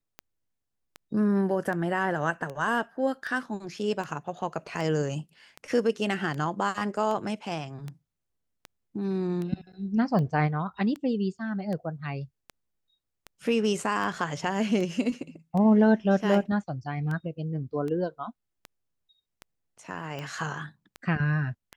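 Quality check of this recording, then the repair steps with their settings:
tick 78 rpm -23 dBFS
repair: de-click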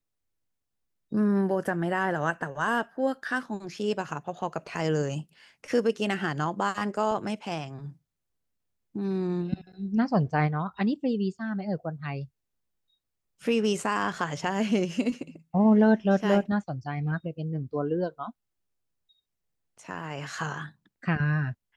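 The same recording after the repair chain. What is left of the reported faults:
none

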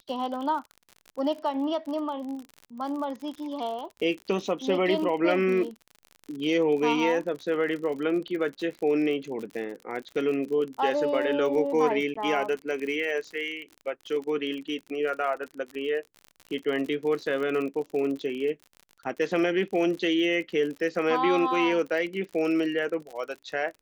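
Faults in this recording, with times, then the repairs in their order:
crackle 50/s -34 dBFS
12.14–12.15 gap 15 ms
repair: de-click; interpolate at 12.14, 15 ms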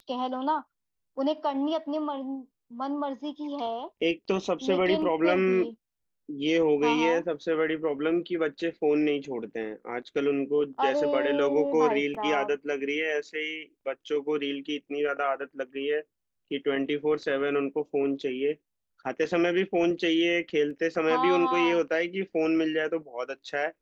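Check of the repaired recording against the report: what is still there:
none

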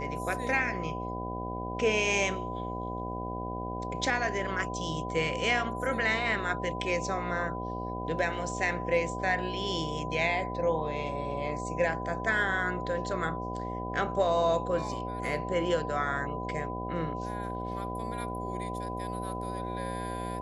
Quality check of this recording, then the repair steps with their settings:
buzz 60 Hz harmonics 13 -37 dBFS
tone 1000 Hz -37 dBFS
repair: notch 1000 Hz, Q 30; de-hum 60 Hz, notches 13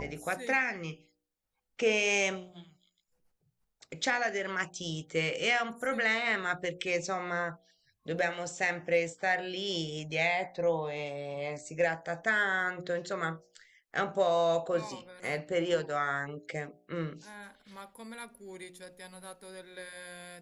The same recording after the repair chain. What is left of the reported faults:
none

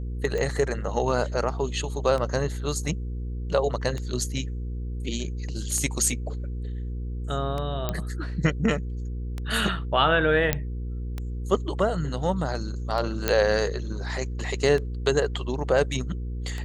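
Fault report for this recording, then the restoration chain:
hum 60 Hz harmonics 8 -31 dBFS
tick 33 1/3 rpm -18 dBFS
7.89 pop -12 dBFS
10.53 pop -7 dBFS
13.28 pop -7 dBFS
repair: de-click; de-hum 60 Hz, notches 8

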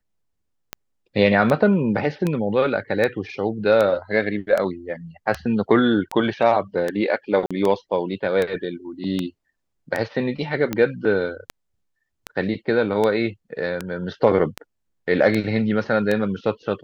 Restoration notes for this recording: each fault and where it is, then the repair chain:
tick 78 rpm -10 dBFS
7.46–7.51 gap 46 ms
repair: de-click; interpolate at 7.46, 46 ms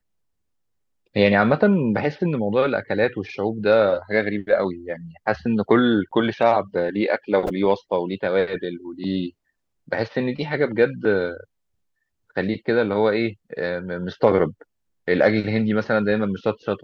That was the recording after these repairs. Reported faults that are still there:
none

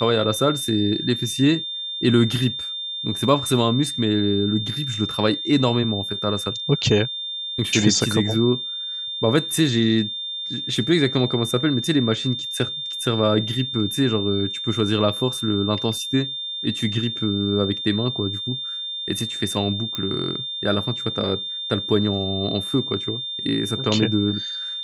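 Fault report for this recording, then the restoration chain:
tone 3600 Hz -27 dBFS
19.95 pop -12 dBFS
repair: de-click; notch 3600 Hz, Q 30

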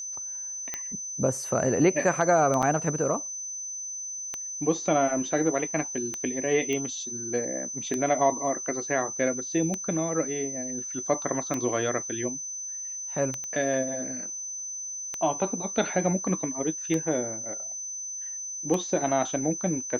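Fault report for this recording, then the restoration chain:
tick 33 1/3 rpm -15 dBFS
tone 6100 Hz -33 dBFS
2.62–2.63 gap 7.2 ms
6.73 pop -18 dBFS
13.44 pop -23 dBFS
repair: de-click; notch 6100 Hz, Q 30; interpolate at 2.62, 7.2 ms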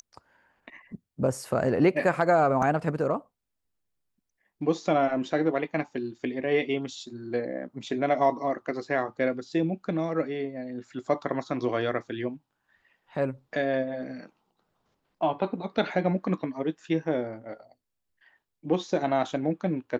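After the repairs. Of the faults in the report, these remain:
6.73 pop

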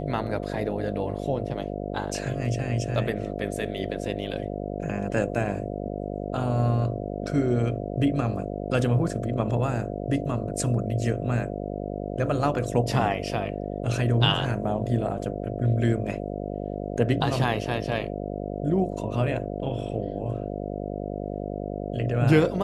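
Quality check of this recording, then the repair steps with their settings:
buzz 50 Hz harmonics 14 -32 dBFS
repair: de-hum 50 Hz, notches 14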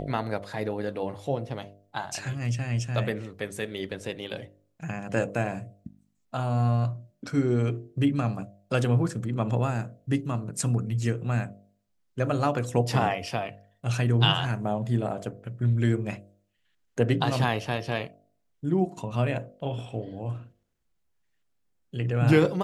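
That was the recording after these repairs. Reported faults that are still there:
none

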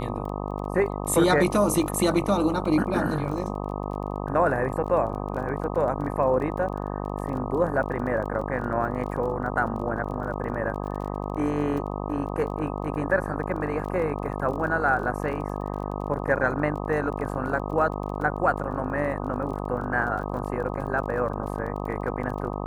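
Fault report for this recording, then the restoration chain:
buzz 50 Hz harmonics 25 -31 dBFS
crackle 27/s -35 dBFS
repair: de-click; de-hum 50 Hz, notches 25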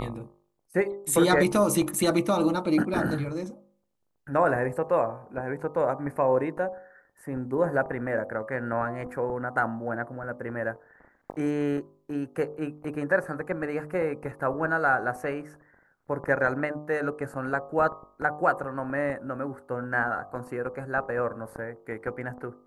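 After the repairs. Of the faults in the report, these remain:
none

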